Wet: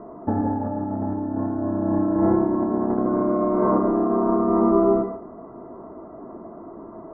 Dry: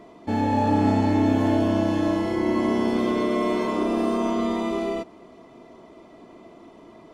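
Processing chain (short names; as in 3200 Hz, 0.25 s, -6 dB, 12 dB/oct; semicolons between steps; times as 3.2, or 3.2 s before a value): steep low-pass 1500 Hz 48 dB/oct; negative-ratio compressor -25 dBFS, ratio -0.5; on a send: reverb, pre-delay 3 ms, DRR 5 dB; on the sum: gain +3 dB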